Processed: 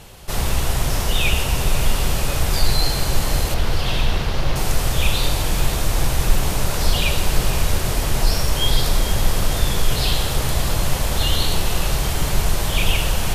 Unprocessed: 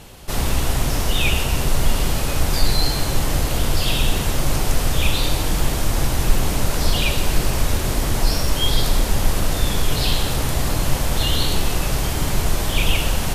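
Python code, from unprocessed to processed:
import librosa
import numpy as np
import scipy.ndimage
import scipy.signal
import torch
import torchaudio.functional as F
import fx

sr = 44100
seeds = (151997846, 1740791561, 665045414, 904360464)

y = fx.cvsd(x, sr, bps=32000, at=(3.54, 4.56))
y = fx.peak_eq(y, sr, hz=270.0, db=-6.0, octaves=0.57)
y = fx.echo_diffused(y, sr, ms=520, feedback_pct=62, wet_db=-11.5)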